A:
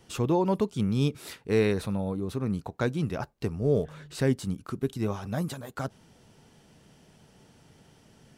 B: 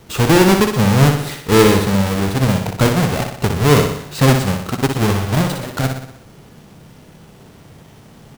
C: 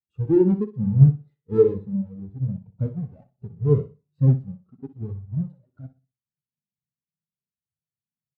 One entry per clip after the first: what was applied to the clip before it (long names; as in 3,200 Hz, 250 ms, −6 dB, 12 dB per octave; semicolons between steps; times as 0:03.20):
each half-wave held at its own peak; on a send: repeating echo 61 ms, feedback 55%, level −6 dB; on the sum: level +8 dB
flanger 0.37 Hz, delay 0.5 ms, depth 8.7 ms, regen −73%; every bin expanded away from the loudest bin 2.5 to 1; level +2.5 dB